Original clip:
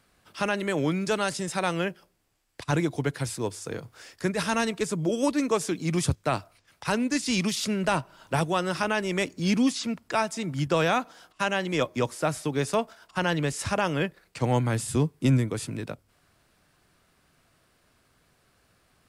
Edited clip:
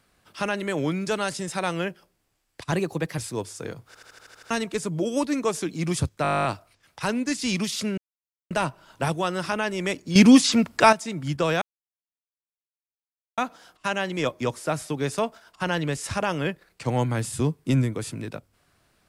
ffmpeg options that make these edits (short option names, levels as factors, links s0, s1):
-filter_complex "[0:a]asplit=26[s0][s1][s2][s3][s4][s5][s6][s7][s8][s9][s10][s11][s12][s13][s14][s15][s16][s17][s18][s19][s20][s21][s22][s23][s24][s25];[s0]atrim=end=2.724[s26];[s1]atrim=start=2.72:end=3.24,asetpts=PTS-STARTPTS,asetrate=50274,aresample=44100[s27];[s2]atrim=start=3.236:end=4.012[s28];[s3]atrim=start=3.928:end=4.012[s29];[s4]atrim=start=3.928:end=4.012[s30];[s5]atrim=start=3.928:end=4.012[s31];[s6]atrim=start=3.928:end=4.012[s32];[s7]atrim=start=3.928:end=4.012[s33];[s8]atrim=start=3.928:end=4.012[s34];[s9]atrim=start=3.928:end=4.012[s35];[s10]atrim=start=4.568:end=6.312[s36];[s11]atrim=start=6.288:end=6.312[s37];[s12]atrim=start=6.288:end=6.312[s38];[s13]atrim=start=6.288:end=6.312[s39];[s14]atrim=start=6.288:end=6.312[s40];[s15]atrim=start=6.288:end=6.312[s41];[s16]atrim=start=6.288:end=6.312[s42];[s17]atrim=start=6.288:end=6.312[s43];[s18]atrim=start=6.288:end=6.312[s44];[s19]atrim=start=6.288:end=6.312[s45];[s20]atrim=start=6.288:end=6.312[s46];[s21]atrim=start=6.288:end=7.82,asetpts=PTS-STARTPTS,afade=t=out:st=1.528:d=0.004:c=hsin,apad=pad_dur=0.53[s47];[s22]atrim=start=7.82:end=9.472,asetpts=PTS-STARTPTS,afade=t=in:d=0.004:c=hsin[s48];[s23]atrim=start=9.468:end=10.242,asetpts=PTS-STARTPTS,volume=3.16[s49];[s24]atrim=start=10.238:end=10.93,asetpts=PTS-STARTPTS,afade=t=out:st=0.688:d=0.004:c=hsin,apad=pad_dur=1.76[s50];[s25]atrim=start=10.93,asetpts=PTS-STARTPTS,afade=t=in:d=0.004:c=hsin[s51];[s26][s27]acrossfade=d=0.004:c1=hsin:c2=hsin[s52];[s52][s28]acrossfade=d=0.004:c1=hsin:c2=hsin[s53];[s53][s29]acrossfade=d=0.004:c1=hsin:c2=hsin[s54];[s54][s30]acrossfade=d=0.004:c1=hsin:c2=hsin[s55];[s55][s31]acrossfade=d=0.004:c1=hsin:c2=hsin[s56];[s56][s32]acrossfade=d=0.004:c1=hsin:c2=hsin[s57];[s57][s33]acrossfade=d=0.004:c1=hsin:c2=hsin[s58];[s58][s34]acrossfade=d=0.004:c1=hsin:c2=hsin[s59];[s59][s35]acrossfade=d=0.004:c1=hsin:c2=hsin[s60];[s60][s36]acrossfade=d=0.004:c1=hsin:c2=hsin[s61];[s61][s37]acrossfade=d=0.004:c1=hsin:c2=hsin[s62];[s62][s38]acrossfade=d=0.004:c1=hsin:c2=hsin[s63];[s63][s39]acrossfade=d=0.004:c1=hsin:c2=hsin[s64];[s64][s40]acrossfade=d=0.004:c1=hsin:c2=hsin[s65];[s65][s41]acrossfade=d=0.004:c1=hsin:c2=hsin[s66];[s66][s42]acrossfade=d=0.004:c1=hsin:c2=hsin[s67];[s67][s43]acrossfade=d=0.004:c1=hsin:c2=hsin[s68];[s68][s44]acrossfade=d=0.004:c1=hsin:c2=hsin[s69];[s69][s45]acrossfade=d=0.004:c1=hsin:c2=hsin[s70];[s70][s46]acrossfade=d=0.004:c1=hsin:c2=hsin[s71];[s47][s48]concat=n=2:v=0:a=1[s72];[s71][s72]acrossfade=d=0.004:c1=hsin:c2=hsin[s73];[s73][s49]acrossfade=d=0.004:c1=hsin:c2=hsin[s74];[s50][s51]concat=n=2:v=0:a=1[s75];[s74][s75]acrossfade=d=0.004:c1=hsin:c2=hsin"